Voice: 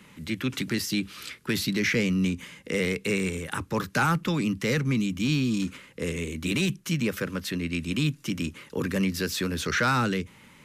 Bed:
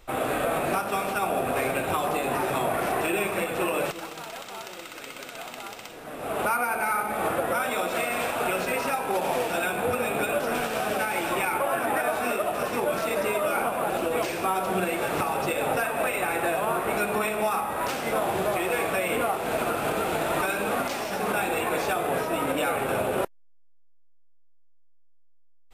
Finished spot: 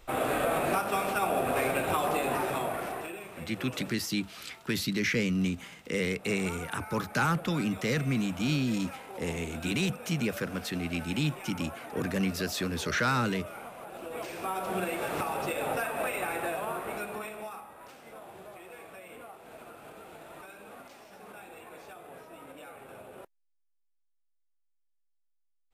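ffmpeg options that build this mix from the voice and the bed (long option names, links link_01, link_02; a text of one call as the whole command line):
ffmpeg -i stem1.wav -i stem2.wav -filter_complex "[0:a]adelay=3200,volume=-3.5dB[link_01];[1:a]volume=10dB,afade=type=out:start_time=2.21:duration=1:silence=0.16788,afade=type=in:start_time=13.9:duration=0.88:silence=0.251189,afade=type=out:start_time=16.18:duration=1.59:silence=0.158489[link_02];[link_01][link_02]amix=inputs=2:normalize=0" out.wav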